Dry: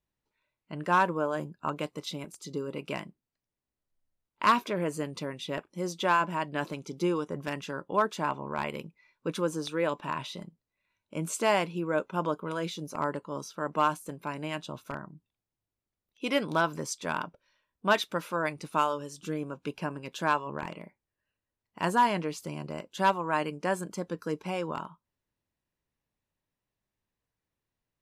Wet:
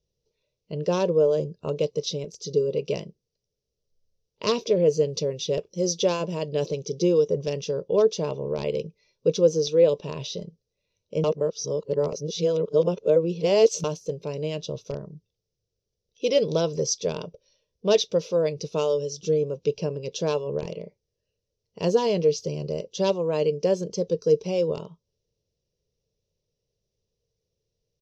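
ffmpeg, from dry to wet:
ffmpeg -i in.wav -filter_complex "[0:a]asettb=1/sr,asplit=3[link_01][link_02][link_03];[link_01]atrim=end=5.084[link_04];[link_02]atrim=start=5.08:end=6.67,asetpts=PTS-STARTPTS,afade=type=in:duration=0.004:curve=qsin,afade=type=out:start_time=1.586:duration=0.004:curve=qsin,highshelf=frequency=8500:gain=10.5[link_05];[link_03]atrim=start=6.666[link_06];[link_04][link_05]acrossfade=duration=0.004:curve1=hsin:curve2=qsin[link_07];[link_07][link_06]acrossfade=duration=0.004:curve1=qsin:curve2=hsin,asplit=3[link_08][link_09][link_10];[link_08]atrim=end=11.242[link_11];[link_09]atrim=start=11.238:end=13.842,asetpts=PTS-STARTPTS,areverse[link_12];[link_10]atrim=start=13.838[link_13];[link_11][link_12]acrossfade=duration=0.004:curve1=hsin:curve2=hsin[link_14];[link_14][link_13]acrossfade=duration=0.004:curve1=hsin:curve2=hsin,firequalizer=gain_entry='entry(150,0);entry(280,-12);entry(450,9);entry(780,-15);entry(1500,-24);entry(2800,-7);entry(5800,6);entry(8600,-27)':delay=0.05:min_phase=1,volume=8.5dB" out.wav

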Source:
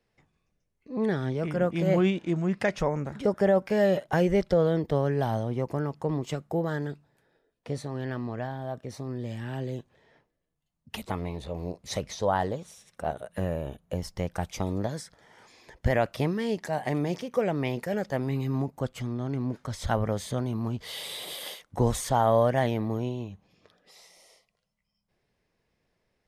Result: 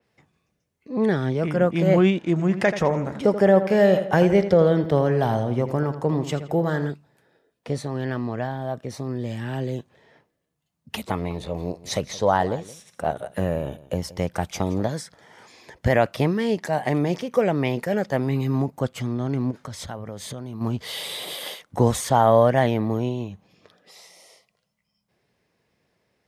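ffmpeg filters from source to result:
ffmpeg -i in.wav -filter_complex "[0:a]asettb=1/sr,asplit=3[link_01][link_02][link_03];[link_01]atrim=end=2.314[link_04];[link_02]atrim=start=2.31:end=6.9,asetpts=PTS-STARTPTS,afade=type=in:duration=0.004:curve=qsin,afade=type=out:start_time=4.586:duration=0.004:curve=qsin,asplit=2[link_05][link_06];[link_06]adelay=83,lowpass=frequency=4600:poles=1,volume=-11dB,asplit=2[link_07][link_08];[link_08]adelay=83,lowpass=frequency=4600:poles=1,volume=0.47,asplit=2[link_09][link_10];[link_10]adelay=83,lowpass=frequency=4600:poles=1,volume=0.47,asplit=2[link_11][link_12];[link_12]adelay=83,lowpass=frequency=4600:poles=1,volume=0.47,asplit=2[link_13][link_14];[link_14]adelay=83,lowpass=frequency=4600:poles=1,volume=0.47[link_15];[link_05][link_07][link_09][link_11][link_13][link_15]amix=inputs=6:normalize=0,atrim=end_sample=202419[link_16];[link_03]atrim=start=6.896[link_17];[link_04][link_16]acrossfade=duration=0.004:curve1=hsin:curve2=qsin[link_18];[link_18][link_17]acrossfade=duration=0.004:curve1=qsin:curve2=hsin,asettb=1/sr,asplit=3[link_19][link_20][link_21];[link_19]atrim=end=11.134[link_22];[link_20]atrim=start=11.13:end=14.89,asetpts=PTS-STARTPTS,afade=type=in:duration=0.004:curve=qsin,afade=type=out:start_time=3.756:duration=0.004:curve=qsin,aecho=1:1:172:0.119,atrim=end_sample=165816[link_23];[link_21]atrim=start=14.886[link_24];[link_22][link_23]acrossfade=duration=0.004:curve1=hsin:curve2=qsin[link_25];[link_25][link_24]acrossfade=duration=0.004:curve1=qsin:curve2=hsin,asplit=3[link_26][link_27][link_28];[link_26]afade=type=out:start_time=19.5:duration=0.02[link_29];[link_27]acompressor=threshold=-37dB:ratio=4:attack=3.2:release=140:knee=1:detection=peak,afade=type=in:start_time=19.5:duration=0.02,afade=type=out:start_time=20.6:duration=0.02[link_30];[link_28]afade=type=in:start_time=20.6:duration=0.02[link_31];[link_29][link_30][link_31]amix=inputs=3:normalize=0,highpass=87,adynamicequalizer=threshold=0.00562:dfrequency=4000:dqfactor=0.7:tfrequency=4000:tqfactor=0.7:attack=5:release=100:ratio=0.375:range=2:mode=cutabove:tftype=highshelf,volume=6dB" out.wav

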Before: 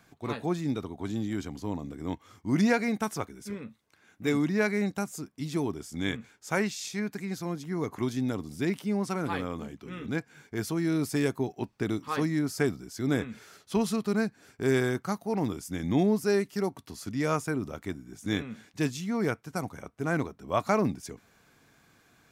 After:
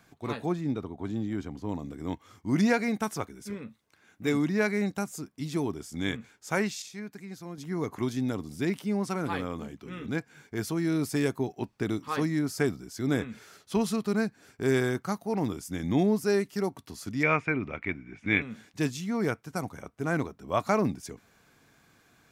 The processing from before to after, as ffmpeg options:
ffmpeg -i in.wav -filter_complex "[0:a]asettb=1/sr,asplit=3[link_01][link_02][link_03];[link_01]atrim=end=0.524[link_04];[link_02]atrim=start=0.52:end=1.69,asetpts=PTS-STARTPTS,afade=type=in:duration=0.004:curve=qsin,afade=type=out:start_time=1.166:duration=0.004:curve=qsin,highshelf=frequency=3100:gain=-11[link_05];[link_03]atrim=start=1.686[link_06];[link_04][link_05]acrossfade=duration=0.004:curve1=hsin:curve2=qsin[link_07];[link_07][link_06]acrossfade=duration=0.004:curve1=qsin:curve2=hsin,asettb=1/sr,asplit=3[link_08][link_09][link_10];[link_08]atrim=end=17.234[link_11];[link_09]atrim=start=17.23:end=18.42,asetpts=PTS-STARTPTS,afade=type=in:duration=0.004:curve=qsin,afade=type=out:start_time=1.186:duration=0.004:curve=qsin,lowpass=frequency=2300:width_type=q:width=6.8[link_12];[link_10]atrim=start=18.416[link_13];[link_11][link_12]acrossfade=duration=0.004:curve1=hsin:curve2=qsin[link_14];[link_14][link_13]acrossfade=duration=0.004:curve1=qsin:curve2=hsin,asplit=3[link_15][link_16][link_17];[link_15]atrim=end=6.822[link_18];[link_16]atrim=start=6.818:end=7.582,asetpts=PTS-STARTPTS,volume=-7.5dB[link_19];[link_17]atrim=start=7.578[link_20];[link_18][link_19]acrossfade=duration=0.004:curve1=hsin:curve2=hsin[link_21];[link_21][link_20]acrossfade=duration=0.004:curve1=hsin:curve2=hsin" out.wav

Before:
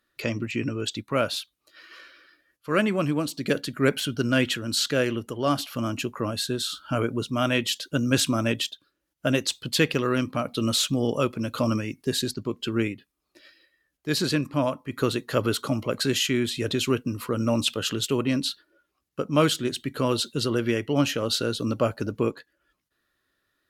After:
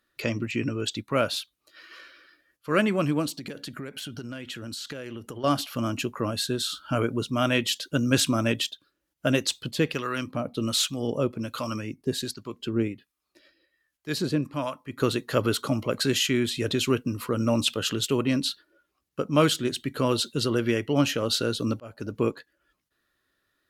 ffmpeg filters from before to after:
ffmpeg -i in.wav -filter_complex "[0:a]asettb=1/sr,asplit=3[link_01][link_02][link_03];[link_01]atrim=end=3.354[link_04];[link_02]atrim=start=3.35:end=5.44,asetpts=PTS-STARTPTS,afade=type=in:duration=0.004:curve=qsin,afade=type=out:start_time=2.086:duration=0.004:curve=qsin,acompressor=threshold=-32dB:ratio=20:attack=3.2:release=140:knee=1:detection=peak[link_05];[link_03]atrim=start=5.436[link_06];[link_04][link_05]acrossfade=duration=0.004:curve1=hsin:curve2=qsin[link_07];[link_07][link_06]acrossfade=duration=0.004:curve1=qsin:curve2=hsin,asettb=1/sr,asplit=3[link_08][link_09][link_10];[link_08]atrim=end=9.714[link_11];[link_09]atrim=start=9.71:end=15,asetpts=PTS-STARTPTS,afade=type=in:duration=0.004:curve=qsin,afade=type=out:start_time=5.286:duration=0.004:curve=qsin,acrossover=split=820[link_12][link_13];[link_12]aeval=exprs='val(0)*(1-0.7/2+0.7/2*cos(2*PI*1.3*n/s))':channel_layout=same[link_14];[link_13]aeval=exprs='val(0)*(1-0.7/2-0.7/2*cos(2*PI*1.3*n/s))':channel_layout=same[link_15];[link_14][link_15]amix=inputs=2:normalize=0[link_16];[link_10]atrim=start=14.996[link_17];[link_11][link_16]acrossfade=duration=0.004:curve1=hsin:curve2=qsin[link_18];[link_18][link_17]acrossfade=duration=0.004:curve1=qsin:curve2=hsin,asplit=2[link_19][link_20];[link_19]atrim=end=21.8,asetpts=PTS-STARTPTS,afade=type=out:start_time=21.796:duration=0.004:curve=hsin[link_21];[link_20]atrim=start=21.8,asetpts=PTS-STARTPTS,afade=type=in:duration=0.44[link_22];[link_21][link_22]concat=n=2:v=0:a=1" out.wav

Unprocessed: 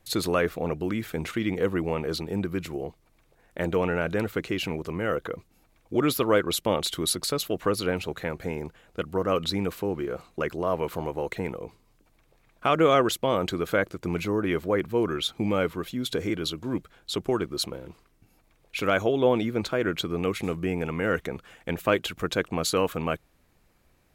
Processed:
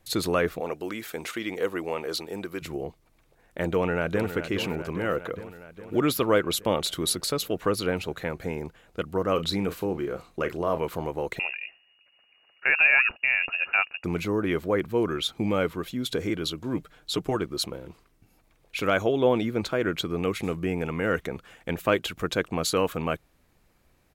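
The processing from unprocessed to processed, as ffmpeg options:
ffmpeg -i in.wav -filter_complex "[0:a]asettb=1/sr,asplit=3[link_01][link_02][link_03];[link_01]atrim=end=0.604[link_04];[link_02]atrim=start=0.6:end=2.62,asetpts=PTS-STARTPTS,afade=type=in:duration=0.004:curve=qsin,afade=type=out:start_time=2.016:duration=0.004:curve=qsin,bass=frequency=250:gain=-15,treble=frequency=4000:gain=4[link_05];[link_03]atrim=start=2.616[link_06];[link_04][link_05]acrossfade=duration=0.004:curve1=hsin:curve2=qsin[link_07];[link_07][link_06]acrossfade=duration=0.004:curve1=qsin:curve2=hsin,asplit=2[link_08][link_09];[link_09]afade=type=in:start_time=3.71:duration=0.01,afade=type=out:start_time=4.34:duration=0.01,aecho=0:1:410|820|1230|1640|2050|2460|2870|3280|3690|4100:0.316228|0.221359|0.154952|0.108466|0.0759263|0.0531484|0.0372039|0.0260427|0.0182299|0.0127609[link_10];[link_08][link_10]amix=inputs=2:normalize=0,asettb=1/sr,asplit=3[link_11][link_12][link_13];[link_11]atrim=end=9.344[link_14];[link_12]atrim=start=9.34:end=10.78,asetpts=PTS-STARTPTS,afade=type=in:duration=0.004:curve=qsin,afade=type=out:start_time=1.436:duration=0.004:curve=qsin,asplit=2[link_15][link_16];[link_16]adelay=36,volume=-11dB[link_17];[link_15][link_17]amix=inputs=2:normalize=0,atrim=end_sample=63504[link_18];[link_13]atrim=start=10.776[link_19];[link_14][link_18]acrossfade=duration=0.004:curve1=hsin:curve2=qsin[link_20];[link_20][link_19]acrossfade=duration=0.004:curve1=qsin:curve2=hsin,asettb=1/sr,asplit=3[link_21][link_22][link_23];[link_21]atrim=end=11.394[link_24];[link_22]atrim=start=11.39:end=14.04,asetpts=PTS-STARTPTS,afade=type=in:duration=0.004:curve=qsin,afade=type=out:start_time=2.646:duration=0.004:curve=qsin,lowpass=frequency=2500:width_type=q:width=0.5098,lowpass=frequency=2500:width_type=q:width=0.6013,lowpass=frequency=2500:width_type=q:width=0.9,lowpass=frequency=2500:width_type=q:width=2.563,afreqshift=-2900[link_25];[link_23]atrim=start=14.036[link_26];[link_24][link_25]acrossfade=duration=0.004:curve1=hsin:curve2=qsin[link_27];[link_27][link_26]acrossfade=duration=0.004:curve1=qsin:curve2=hsin,asettb=1/sr,asplit=3[link_28][link_29][link_30];[link_28]atrim=end=16.774[link_31];[link_29]atrim=start=16.77:end=17.36,asetpts=PTS-STARTPTS,afade=type=in:duration=0.004:curve=qsin,afade=type=out:start_time=0.586:duration=0.004:curve=qsin,aecho=1:1:6.6:0.65,atrim=end_sample=26019[link_32];[link_30]atrim=start=17.356[link_33];[link_31][link_32]acrossfade=duration=0.004:curve1=hsin:curve2=qsin[link_34];[link_34][link_33]acrossfade=duration=0.004:curve1=qsin:curve2=hsin" out.wav

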